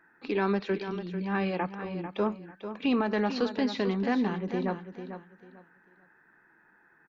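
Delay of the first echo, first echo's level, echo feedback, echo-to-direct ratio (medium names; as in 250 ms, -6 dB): 445 ms, -10.0 dB, 24%, -9.5 dB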